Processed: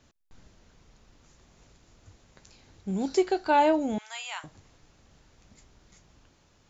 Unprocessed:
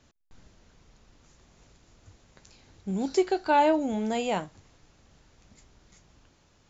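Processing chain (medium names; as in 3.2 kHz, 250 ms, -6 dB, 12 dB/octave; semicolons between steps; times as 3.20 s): 3.98–4.44 s: inverse Chebyshev high-pass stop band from 320 Hz, stop band 60 dB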